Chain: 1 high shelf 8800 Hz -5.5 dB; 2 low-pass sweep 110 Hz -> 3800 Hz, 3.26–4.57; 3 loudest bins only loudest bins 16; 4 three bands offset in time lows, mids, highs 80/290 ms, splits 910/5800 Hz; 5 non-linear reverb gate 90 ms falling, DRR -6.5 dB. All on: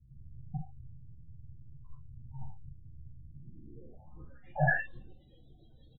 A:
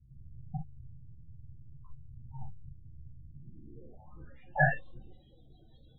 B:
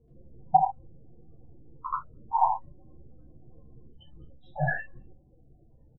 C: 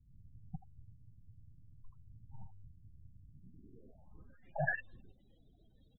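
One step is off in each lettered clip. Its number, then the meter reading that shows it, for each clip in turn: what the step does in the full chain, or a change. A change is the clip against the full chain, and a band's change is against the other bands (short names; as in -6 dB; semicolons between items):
4, echo-to-direct 14.0 dB to 6.5 dB; 2, 1 kHz band +17.0 dB; 5, echo-to-direct 14.0 dB to 6.0 dB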